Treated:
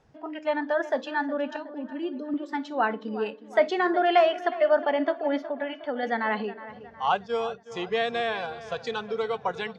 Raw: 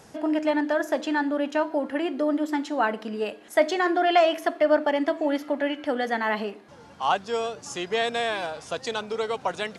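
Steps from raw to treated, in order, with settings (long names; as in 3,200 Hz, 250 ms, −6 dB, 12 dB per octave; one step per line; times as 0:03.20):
0:07.06–0:07.72: noise gate −34 dBFS, range −15 dB
noise reduction from a noise print of the clip's start 13 dB
0:01.56–0:02.34: flat-topped bell 1,100 Hz −14.5 dB 2.6 octaves
0:05.45–0:06.03: downward compressor, threshold −26 dBFS, peak gain reduction 4.5 dB
high-frequency loss of the air 160 metres
tape delay 365 ms, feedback 53%, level −14 dB, low-pass 2,900 Hz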